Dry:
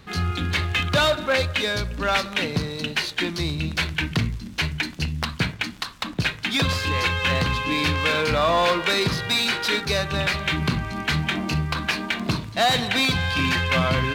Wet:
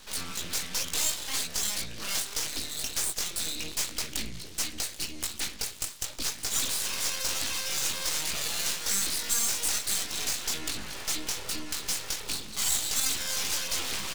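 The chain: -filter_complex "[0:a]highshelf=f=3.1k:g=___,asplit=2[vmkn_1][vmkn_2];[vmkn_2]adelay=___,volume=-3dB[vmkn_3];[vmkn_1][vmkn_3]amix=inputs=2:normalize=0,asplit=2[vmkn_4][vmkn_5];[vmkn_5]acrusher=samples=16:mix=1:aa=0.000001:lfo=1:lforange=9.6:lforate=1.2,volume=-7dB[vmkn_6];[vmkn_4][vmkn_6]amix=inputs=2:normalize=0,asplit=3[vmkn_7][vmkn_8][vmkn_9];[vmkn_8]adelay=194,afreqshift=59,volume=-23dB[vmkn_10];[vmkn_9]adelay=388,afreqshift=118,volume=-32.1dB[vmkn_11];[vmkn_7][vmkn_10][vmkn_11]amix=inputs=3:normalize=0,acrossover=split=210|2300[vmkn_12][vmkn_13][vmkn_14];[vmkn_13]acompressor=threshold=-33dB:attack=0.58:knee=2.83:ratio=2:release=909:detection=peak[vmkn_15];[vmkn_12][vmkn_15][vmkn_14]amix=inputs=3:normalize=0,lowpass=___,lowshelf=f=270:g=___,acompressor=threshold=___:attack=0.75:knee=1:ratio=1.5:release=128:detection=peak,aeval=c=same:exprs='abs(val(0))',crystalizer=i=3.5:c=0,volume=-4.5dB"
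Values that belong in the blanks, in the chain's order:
2.5, 19, 6.4k, -9, -34dB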